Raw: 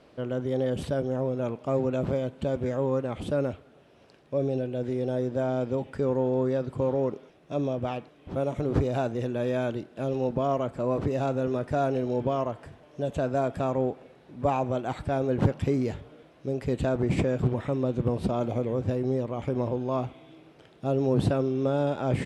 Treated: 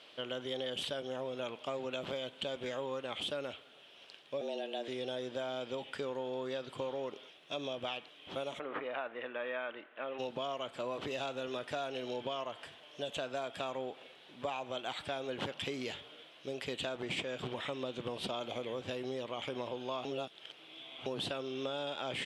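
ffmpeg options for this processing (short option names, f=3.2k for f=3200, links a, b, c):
-filter_complex "[0:a]asettb=1/sr,asplit=3[a][b][c];[a]atrim=end=4.414[d];[b]atrim=start=4.41:end=4.88,asetpts=PTS-STARTPTS,afade=t=in:d=0.004:c=qsin,afade=t=out:st=0.466:d=0.004:c=qsin,afreqshift=110[e];[c]atrim=start=4.876[f];[d][e]acrossfade=d=0.004:c1=hsin:c2=qsin[g];[g][f]acrossfade=d=0.004:c1=qsin:c2=hsin,asplit=3[h][i][j];[h]afade=t=out:st=8.58:d=0.02[k];[i]highpass=340,equalizer=f=380:t=q:w=4:g=-6,equalizer=f=730:t=q:w=4:g=-3,equalizer=f=1.2k:t=q:w=4:g=5,equalizer=f=1.9k:t=q:w=4:g=4,lowpass=f=2.2k:w=0.5412,lowpass=f=2.2k:w=1.3066,afade=t=in:st=8.58:d=0.02,afade=t=out:st=10.18:d=0.02[l];[j]afade=t=in:st=10.18:d=0.02[m];[k][l][m]amix=inputs=3:normalize=0,asplit=3[n][o][p];[n]atrim=end=20.052[q];[o]atrim=start=20.048:end=21.062,asetpts=PTS-STARTPTS,areverse[r];[p]atrim=start=21.058[s];[q][r]acrossfade=d=0.004:c1=hsin:c2=hsin[t];[t][s]acrossfade=d=0.004:c1=hsin:c2=hsin,highpass=f=1.2k:p=1,equalizer=f=3.2k:t=o:w=0.68:g=14,acompressor=threshold=-36dB:ratio=6,volume=1.5dB"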